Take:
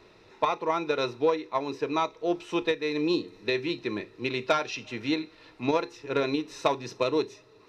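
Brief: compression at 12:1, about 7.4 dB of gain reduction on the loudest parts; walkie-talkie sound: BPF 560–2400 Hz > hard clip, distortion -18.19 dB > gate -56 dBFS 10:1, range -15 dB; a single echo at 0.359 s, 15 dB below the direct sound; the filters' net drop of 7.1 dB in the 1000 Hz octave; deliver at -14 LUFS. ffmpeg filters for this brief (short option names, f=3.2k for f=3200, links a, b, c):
-af "equalizer=f=1k:t=o:g=-8,acompressor=threshold=-29dB:ratio=12,highpass=560,lowpass=2.4k,aecho=1:1:359:0.178,asoftclip=type=hard:threshold=-30dB,agate=range=-15dB:threshold=-56dB:ratio=10,volume=27.5dB"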